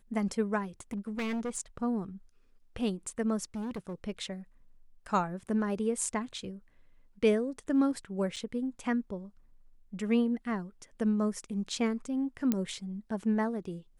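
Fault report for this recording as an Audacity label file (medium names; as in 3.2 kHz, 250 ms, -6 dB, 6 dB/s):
0.910000	1.580000	clipped -30.5 dBFS
3.550000	3.940000	clipped -33 dBFS
8.360000	8.370000	dropout 6 ms
12.520000	12.520000	pop -15 dBFS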